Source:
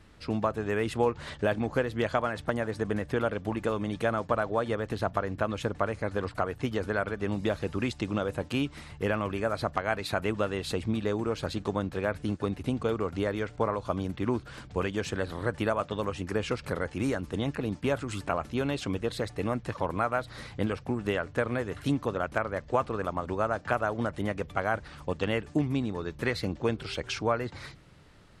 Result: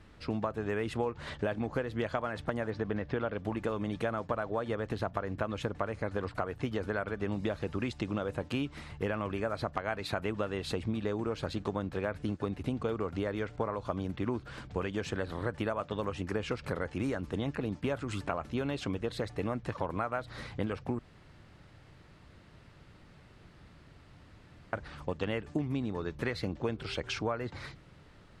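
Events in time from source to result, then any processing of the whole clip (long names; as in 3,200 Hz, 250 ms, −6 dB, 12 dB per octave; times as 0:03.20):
0:02.70–0:03.39: low-pass filter 5,300 Hz 24 dB per octave
0:20.99–0:24.73: fill with room tone
whole clip: high-shelf EQ 6,300 Hz −8.5 dB; downward compressor 3 to 1, threshold −30 dBFS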